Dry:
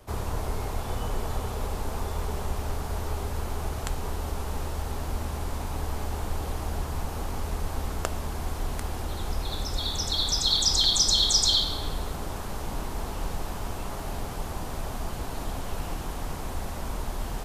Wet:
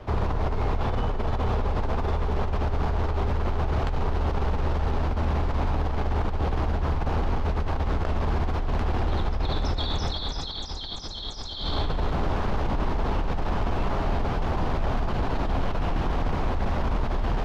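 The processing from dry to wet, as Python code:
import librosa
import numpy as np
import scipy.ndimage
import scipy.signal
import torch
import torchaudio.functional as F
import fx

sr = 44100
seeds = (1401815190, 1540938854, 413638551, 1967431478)

y = fx.over_compress(x, sr, threshold_db=-31.0, ratio=-1.0)
y = 10.0 ** (-24.5 / 20.0) * np.tanh(y / 10.0 ** (-24.5 / 20.0))
y = fx.air_absorb(y, sr, metres=250.0)
y = y * 10.0 ** (8.5 / 20.0)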